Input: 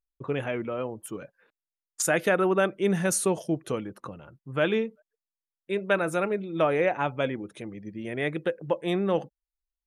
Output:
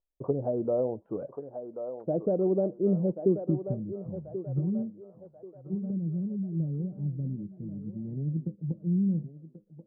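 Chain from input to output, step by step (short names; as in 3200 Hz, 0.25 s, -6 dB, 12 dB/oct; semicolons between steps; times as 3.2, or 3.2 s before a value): treble ducked by the level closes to 320 Hz, closed at -25 dBFS; LPF 1400 Hz 12 dB/oct; low-pass sweep 650 Hz -> 170 Hz, 2.96–3.7; on a send: thinning echo 1.085 s, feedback 59%, high-pass 650 Hz, level -5 dB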